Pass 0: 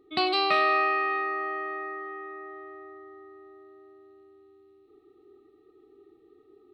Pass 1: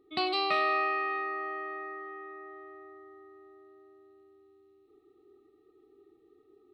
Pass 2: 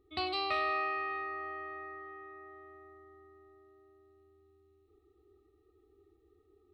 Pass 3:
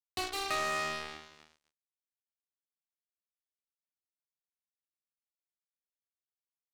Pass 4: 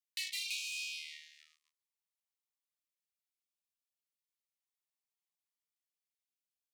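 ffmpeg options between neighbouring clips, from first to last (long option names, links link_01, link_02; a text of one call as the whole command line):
ffmpeg -i in.wav -af "bandreject=frequency=1600:width=13,volume=-4.5dB" out.wav
ffmpeg -i in.wav -af "lowshelf=frequency=110:width_type=q:width=3:gain=13,volume=-4.5dB" out.wav
ffmpeg -i in.wav -af "acrusher=bits=4:mix=0:aa=0.5,volume=-1dB" out.wav
ffmpeg -i in.wav -af "asuperstop=centerf=1500:order=4:qfactor=2.7,afftfilt=real='re*gte(b*sr/1024,690*pow(2300/690,0.5+0.5*sin(2*PI*0.34*pts/sr)))':imag='im*gte(b*sr/1024,690*pow(2300/690,0.5+0.5*sin(2*PI*0.34*pts/sr)))':win_size=1024:overlap=0.75" out.wav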